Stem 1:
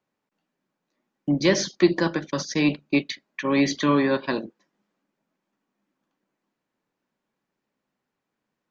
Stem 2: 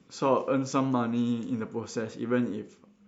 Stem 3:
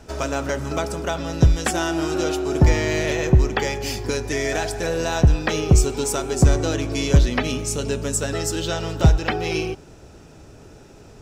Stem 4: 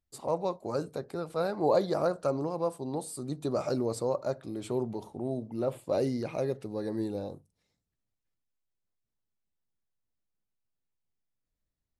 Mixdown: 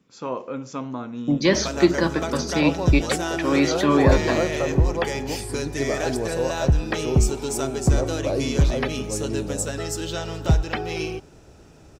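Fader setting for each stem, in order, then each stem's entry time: +1.0 dB, -4.5 dB, -4.0 dB, +3.0 dB; 0.00 s, 0.00 s, 1.45 s, 2.35 s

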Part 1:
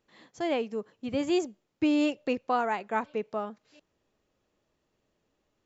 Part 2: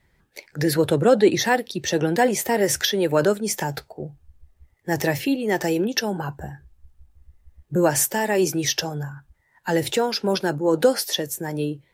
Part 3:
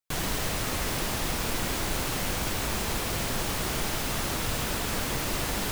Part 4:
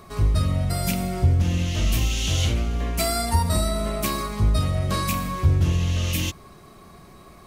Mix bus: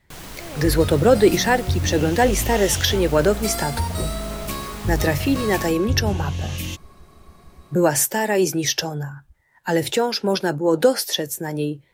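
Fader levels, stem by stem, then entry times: -10.5 dB, +1.5 dB, -7.5 dB, -4.0 dB; 0.00 s, 0.00 s, 0.00 s, 0.45 s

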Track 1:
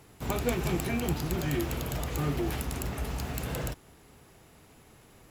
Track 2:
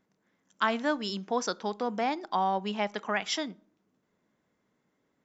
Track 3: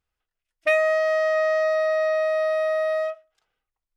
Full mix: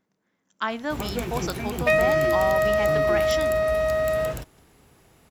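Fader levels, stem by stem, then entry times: -0.5 dB, -0.5 dB, 0.0 dB; 0.70 s, 0.00 s, 1.20 s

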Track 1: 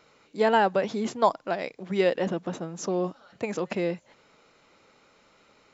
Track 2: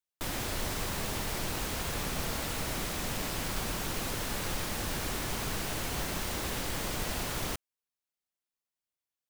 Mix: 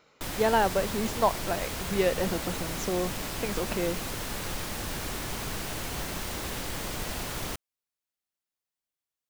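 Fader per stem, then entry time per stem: -2.5 dB, 0.0 dB; 0.00 s, 0.00 s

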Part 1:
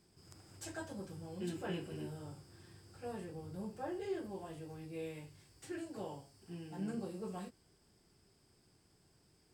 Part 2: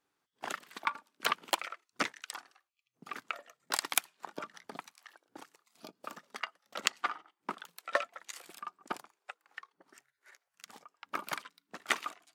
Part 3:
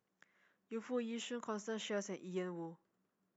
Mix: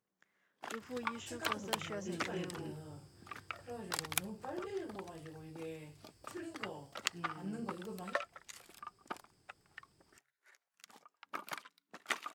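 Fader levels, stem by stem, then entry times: -2.0 dB, -6.0 dB, -4.0 dB; 0.65 s, 0.20 s, 0.00 s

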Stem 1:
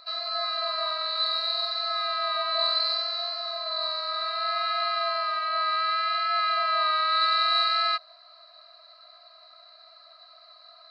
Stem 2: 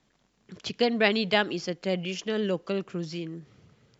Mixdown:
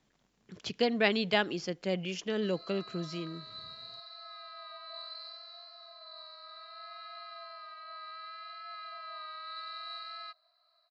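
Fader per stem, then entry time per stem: -19.5 dB, -4.0 dB; 2.35 s, 0.00 s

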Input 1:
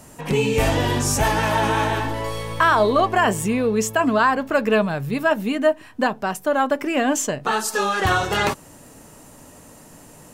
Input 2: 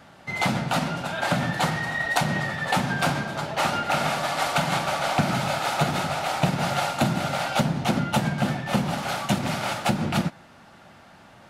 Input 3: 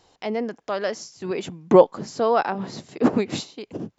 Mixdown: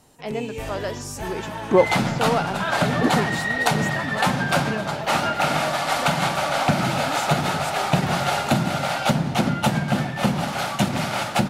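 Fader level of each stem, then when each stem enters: -12.5 dB, +2.5 dB, -3.0 dB; 0.00 s, 1.50 s, 0.00 s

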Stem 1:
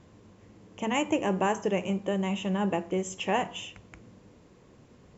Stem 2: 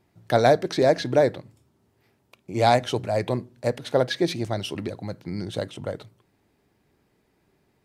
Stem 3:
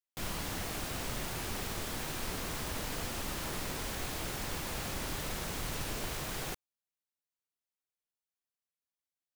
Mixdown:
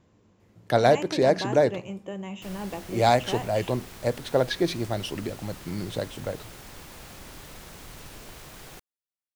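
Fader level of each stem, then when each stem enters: -7.0 dB, -1.5 dB, -6.5 dB; 0.00 s, 0.40 s, 2.25 s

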